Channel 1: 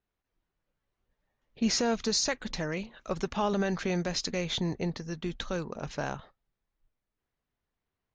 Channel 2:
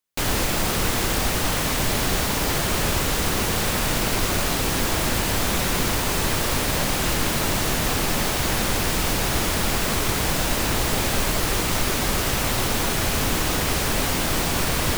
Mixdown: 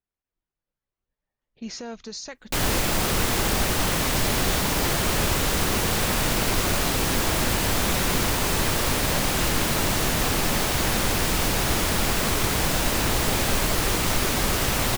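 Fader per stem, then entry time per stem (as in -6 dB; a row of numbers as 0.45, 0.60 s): -8.0, -0.5 dB; 0.00, 2.35 s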